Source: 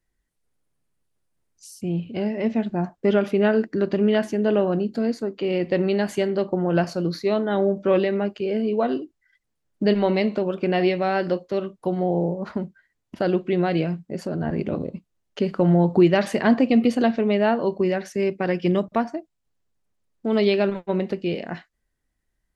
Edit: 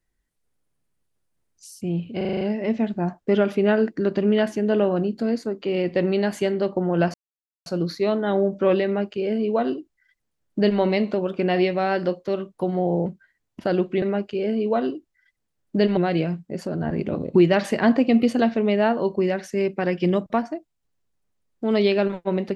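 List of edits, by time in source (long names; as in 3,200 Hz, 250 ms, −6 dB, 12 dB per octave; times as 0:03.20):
0:02.17: stutter 0.04 s, 7 plays
0:06.90: splice in silence 0.52 s
0:08.09–0:10.04: duplicate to 0:13.57
0:12.30–0:12.61: remove
0:14.95–0:15.97: remove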